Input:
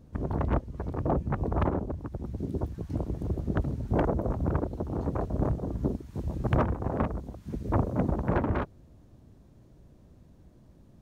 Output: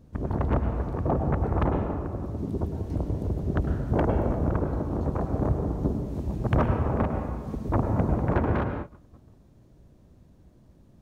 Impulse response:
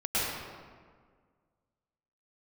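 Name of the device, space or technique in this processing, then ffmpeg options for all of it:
keyed gated reverb: -filter_complex "[0:a]asplit=3[a][b][c];[1:a]atrim=start_sample=2205[d];[b][d]afir=irnorm=-1:irlink=0[e];[c]apad=whole_len=485710[f];[e][f]sidechaingate=range=-33dB:threshold=-50dB:ratio=16:detection=peak,volume=-13.5dB[g];[a][g]amix=inputs=2:normalize=0"

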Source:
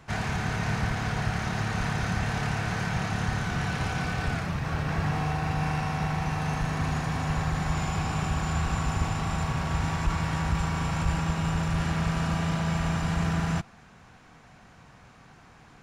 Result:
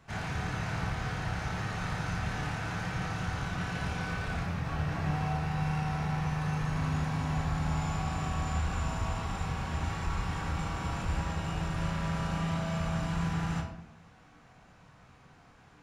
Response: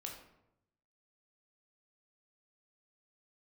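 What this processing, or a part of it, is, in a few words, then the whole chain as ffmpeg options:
bathroom: -filter_complex "[1:a]atrim=start_sample=2205[a];[0:a][a]afir=irnorm=-1:irlink=0,volume=-2.5dB"

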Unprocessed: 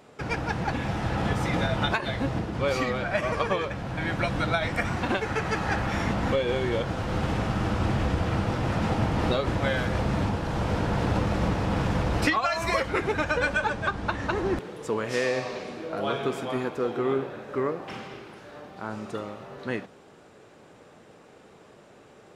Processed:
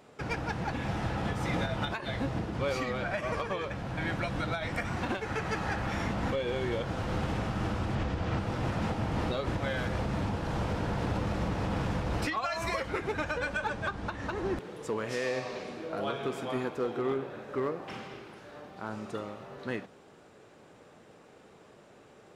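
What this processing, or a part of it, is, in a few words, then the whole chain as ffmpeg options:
limiter into clipper: -filter_complex "[0:a]asettb=1/sr,asplit=3[a][b][c];[a]atrim=end=7.954[d];[b]atrim=start=7.95:end=8.39,asetpts=PTS-STARTPTS,afade=t=in:d=0.004:c=qsin,afade=t=out:st=0.436:d=0.004:c=qsin,lowpass=7.1k[e];[c]atrim=start=8.386[f];[d][e]acrossfade=d=0.004:c1=hsin:c2=qsin[g];[g][f]acrossfade=d=0.004:c1=qsin:c2=hsin,alimiter=limit=-18dB:level=0:latency=1:release=215,asoftclip=type=hard:threshold=-20dB,volume=-3.5dB"

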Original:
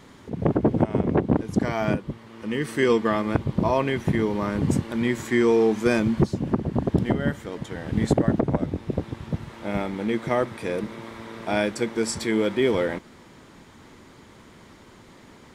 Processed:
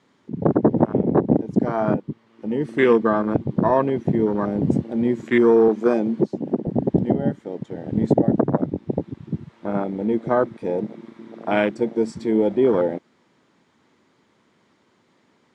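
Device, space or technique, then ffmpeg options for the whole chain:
over-cleaned archive recording: -filter_complex "[0:a]highpass=150,lowpass=7.2k,afwtdn=0.0501,asettb=1/sr,asplit=3[a][b][c];[a]atrim=end=5.684[d];[b]atrim=start=5.68:end=6.67,asetpts=PTS-STARTPTS,afade=t=in:d=0.004:c=qsin,afade=t=out:st=0.986:d=0.004:c=qsin,highpass=240[e];[c]atrim=start=6.666[f];[d][e]acrossfade=d=0.004:c1=hsin:c2=qsin[g];[g][f]acrossfade=d=0.004:c1=qsin:c2=hsin,volume=4.5dB"

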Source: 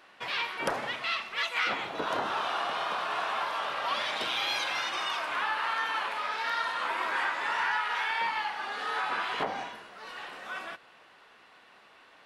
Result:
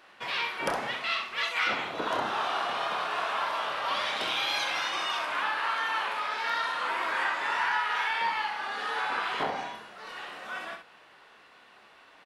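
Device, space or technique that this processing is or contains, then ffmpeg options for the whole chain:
slapback doubling: -filter_complex "[0:a]asplit=3[a][b][c];[b]adelay=28,volume=-9dB[d];[c]adelay=64,volume=-7dB[e];[a][d][e]amix=inputs=3:normalize=0"

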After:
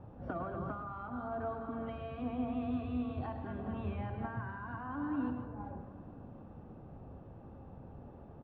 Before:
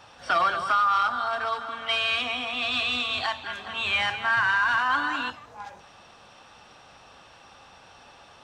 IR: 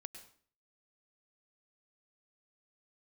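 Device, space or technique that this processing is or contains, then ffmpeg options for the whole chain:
television next door: -filter_complex "[0:a]asplit=2[a][b];[b]adelay=485,lowpass=f=1.6k:p=1,volume=-21dB,asplit=2[c][d];[d]adelay=485,lowpass=f=1.6k:p=1,volume=0.52,asplit=2[e][f];[f]adelay=485,lowpass=f=1.6k:p=1,volume=0.52,asplit=2[g][h];[h]adelay=485,lowpass=f=1.6k:p=1,volume=0.52[i];[a][c][e][g][i]amix=inputs=5:normalize=0,acompressor=threshold=-28dB:ratio=6,lowpass=270[j];[1:a]atrim=start_sample=2205[k];[j][k]afir=irnorm=-1:irlink=0,volume=17dB"

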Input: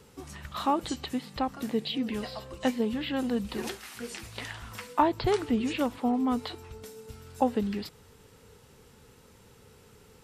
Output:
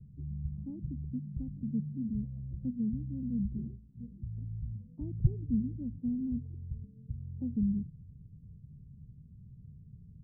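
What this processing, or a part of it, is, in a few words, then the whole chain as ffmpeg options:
the neighbour's flat through the wall: -af "lowpass=f=170:w=0.5412,lowpass=f=170:w=1.3066,equalizer=f=150:t=o:w=0.65:g=6,volume=6.5dB"

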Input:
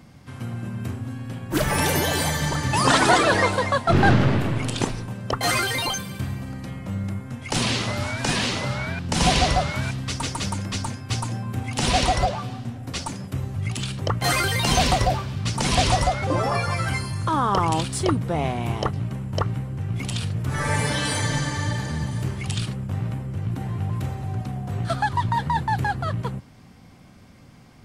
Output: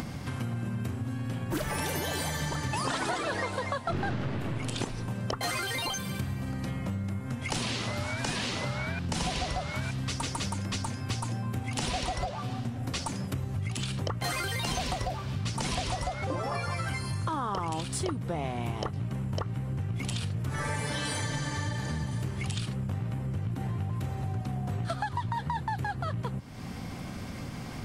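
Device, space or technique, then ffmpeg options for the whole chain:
upward and downward compression: -af "acompressor=mode=upward:threshold=-27dB:ratio=2.5,acompressor=threshold=-29dB:ratio=6"

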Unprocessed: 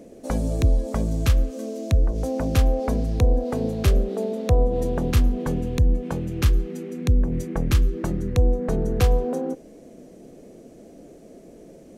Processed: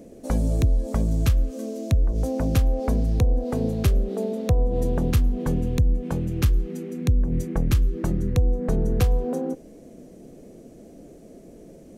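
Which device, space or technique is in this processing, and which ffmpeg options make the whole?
ASMR close-microphone chain: -af "lowshelf=f=240:g=6.5,acompressor=threshold=-13dB:ratio=6,highshelf=f=9k:g=5.5,volume=-2.5dB"

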